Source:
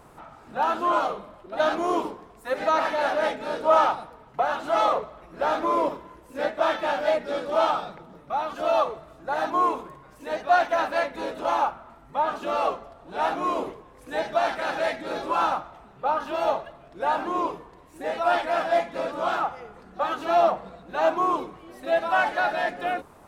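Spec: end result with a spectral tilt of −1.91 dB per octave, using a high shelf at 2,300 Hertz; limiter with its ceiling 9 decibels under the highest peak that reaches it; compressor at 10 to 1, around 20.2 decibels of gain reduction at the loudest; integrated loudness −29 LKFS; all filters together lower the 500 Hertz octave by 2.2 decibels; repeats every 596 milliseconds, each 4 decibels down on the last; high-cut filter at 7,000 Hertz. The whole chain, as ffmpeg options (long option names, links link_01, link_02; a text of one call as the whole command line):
ffmpeg -i in.wav -af "lowpass=7000,equalizer=frequency=500:width_type=o:gain=-4,highshelf=frequency=2300:gain=7.5,acompressor=threshold=-36dB:ratio=10,alimiter=level_in=9.5dB:limit=-24dB:level=0:latency=1,volume=-9.5dB,aecho=1:1:596|1192|1788|2384|2980|3576|4172|4768|5364:0.631|0.398|0.25|0.158|0.0994|0.0626|0.0394|0.0249|0.0157,volume=12dB" out.wav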